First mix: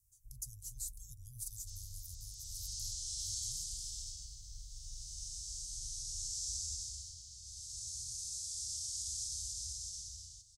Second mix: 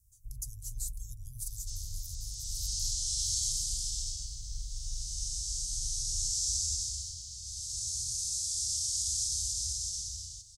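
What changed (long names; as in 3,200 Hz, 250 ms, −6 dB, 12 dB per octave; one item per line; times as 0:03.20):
speech +3.5 dB
first sound +11.5 dB
second sound +8.5 dB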